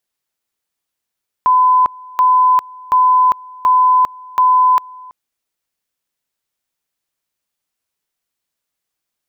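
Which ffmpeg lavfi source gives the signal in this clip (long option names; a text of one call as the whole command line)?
ffmpeg -f lavfi -i "aevalsrc='pow(10,(-7.5-24.5*gte(mod(t,0.73),0.4))/20)*sin(2*PI*1010*t)':duration=3.65:sample_rate=44100" out.wav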